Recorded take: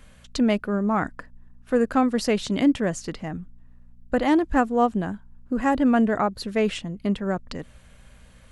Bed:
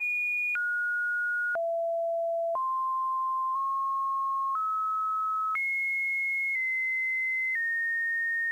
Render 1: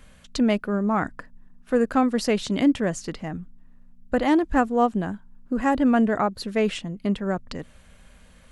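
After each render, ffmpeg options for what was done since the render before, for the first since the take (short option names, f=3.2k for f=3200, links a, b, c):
-af "bandreject=f=60:t=h:w=4,bandreject=f=120:t=h:w=4"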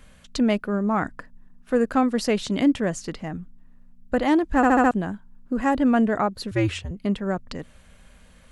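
-filter_complex "[0:a]asettb=1/sr,asplit=3[a][b][c];[a]atrim=end=6.514[d];[b]atrim=start=6.51:end=6.91,asetpts=PTS-STARTPTS,afade=t=in:d=0.004:c=qsin,afade=t=out:st=0.396:d=0.004:c=qsin,afreqshift=-99[e];[c]atrim=start=6.906[f];[d][e]acrossfade=d=0.004:c1=hsin:c2=qsin[g];[g][f]acrossfade=d=0.004:c1=qsin:c2=hsin,asplit=6[h][i][j][k][l][m];[h]atrim=end=4.632[n];[i]atrim=start=4.558:end=4.632[o];[j]atrim=start=4.558:end=4.632[p];[k]atrim=start=4.558:end=4.632[q];[l]atrim=start=4.558:end=4.632[r];[m]atrim=start=4.908[s];[n][o]acrossfade=d=0.004:c1=hsin:c2=hsin[t];[t][p]acrossfade=d=0.004:c1=hsin:c2=hsin[u];[u][q]acrossfade=d=0.004:c1=hsin:c2=hsin[v];[v][r]acrossfade=d=0.004:c1=hsin:c2=hsin[w];[w][s]acrossfade=d=0.004:c1=hsin:c2=hsin"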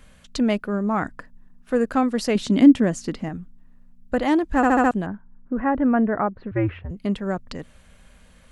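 -filter_complex "[0:a]asettb=1/sr,asplit=3[a][b][c];[a]atrim=end=2.354[d];[b]atrim=start=2.35:end=3.29,asetpts=PTS-STARTPTS,afade=t=in:d=0.004:c=qsin,afade=t=out:st=0.936:d=0.004:c=qsin,equalizer=f=250:w=1.6:g=9[e];[c]atrim=start=3.286[f];[d][e]acrossfade=d=0.004:c1=hsin:c2=qsin[g];[g][f]acrossfade=d=0.004:c1=qsin:c2=hsin,asettb=1/sr,asplit=3[h][i][j];[h]atrim=end=5.064[k];[i]atrim=start=5.06:end=6.9,asetpts=PTS-STARTPTS,afade=t=in:d=0.004:c=qsin,afade=t=out:st=1.836:d=0.004:c=qsin,lowpass=f=2k:w=0.5412,lowpass=f=2k:w=1.3066[l];[j]atrim=start=6.896[m];[k][l]acrossfade=d=0.004:c1=hsin:c2=qsin[n];[n][m]acrossfade=d=0.004:c1=qsin:c2=hsin"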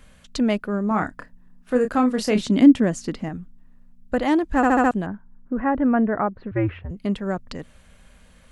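-filter_complex "[0:a]asettb=1/sr,asplit=3[a][b][c];[a]atrim=end=0.884[d];[b]atrim=start=0.88:end=2.42,asetpts=PTS-STARTPTS,afade=t=in:d=0.004:c=qsin,afade=t=out:st=1.536:d=0.004:c=qsin,asplit=2[e][f];[f]adelay=28,volume=-7dB[g];[e][g]amix=inputs=2:normalize=0,atrim=end_sample=67914[h];[c]atrim=start=2.416[i];[d][h]acrossfade=d=0.004:c1=hsin:c2=qsin[j];[j][i]acrossfade=d=0.004:c1=qsin:c2=hsin"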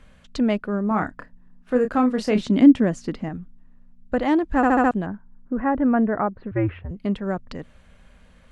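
-af "aemphasis=mode=reproduction:type=50kf"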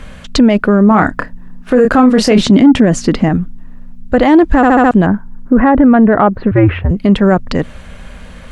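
-af "acontrast=58,alimiter=level_in=13.5dB:limit=-1dB:release=50:level=0:latency=1"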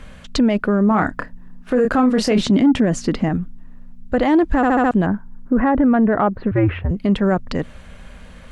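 -af "volume=-7.5dB"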